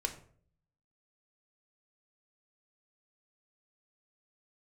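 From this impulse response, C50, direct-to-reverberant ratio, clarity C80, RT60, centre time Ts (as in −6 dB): 11.5 dB, 4.5 dB, 15.0 dB, 0.55 s, 11 ms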